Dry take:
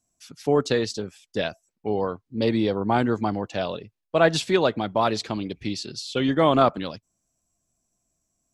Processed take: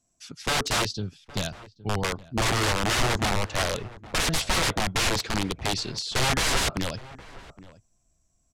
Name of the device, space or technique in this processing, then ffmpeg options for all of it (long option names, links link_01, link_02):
overflowing digital effects unit: -filter_complex "[0:a]asplit=3[link_01][link_02][link_03];[link_01]afade=type=out:start_time=0.86:duration=0.02[link_04];[link_02]equalizer=frequency=125:width_type=o:width=1:gain=6,equalizer=frequency=250:width_type=o:width=1:gain=-3,equalizer=frequency=500:width_type=o:width=1:gain=-11,equalizer=frequency=1000:width_type=o:width=1:gain=-5,equalizer=frequency=2000:width_type=o:width=1:gain=-9,equalizer=frequency=4000:width_type=o:width=1:gain=3,equalizer=frequency=8000:width_type=o:width=1:gain=-11,afade=type=in:start_time=0.86:duration=0.02,afade=type=out:start_time=2.03:duration=0.02[link_05];[link_03]afade=type=in:start_time=2.03:duration=0.02[link_06];[link_04][link_05][link_06]amix=inputs=3:normalize=0,aeval=exprs='(mod(11.9*val(0)+1,2)-1)/11.9':channel_layout=same,lowpass=9000,asplit=2[link_07][link_08];[link_08]adelay=816.3,volume=-18dB,highshelf=frequency=4000:gain=-18.4[link_09];[link_07][link_09]amix=inputs=2:normalize=0,asubboost=boost=3:cutoff=120,volume=3dB"